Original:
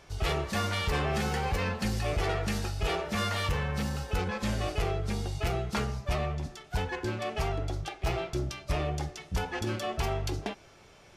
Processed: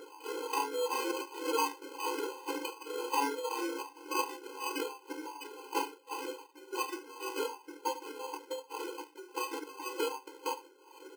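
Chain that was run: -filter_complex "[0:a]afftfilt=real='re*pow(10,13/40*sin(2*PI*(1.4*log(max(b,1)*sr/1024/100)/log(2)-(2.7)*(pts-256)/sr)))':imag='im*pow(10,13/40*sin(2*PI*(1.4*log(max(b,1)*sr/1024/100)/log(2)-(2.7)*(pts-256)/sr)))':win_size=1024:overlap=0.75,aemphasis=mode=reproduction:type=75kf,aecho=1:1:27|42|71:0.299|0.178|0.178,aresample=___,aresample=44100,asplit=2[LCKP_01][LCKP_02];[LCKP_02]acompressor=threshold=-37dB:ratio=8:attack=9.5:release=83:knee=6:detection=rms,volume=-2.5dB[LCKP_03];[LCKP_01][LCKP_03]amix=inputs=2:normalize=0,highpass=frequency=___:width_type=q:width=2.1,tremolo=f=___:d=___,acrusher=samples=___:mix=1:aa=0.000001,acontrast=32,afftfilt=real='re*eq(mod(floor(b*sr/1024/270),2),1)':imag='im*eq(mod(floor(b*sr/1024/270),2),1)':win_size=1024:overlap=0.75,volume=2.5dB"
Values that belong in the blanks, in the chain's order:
8000, 2500, 1.9, 0.8, 24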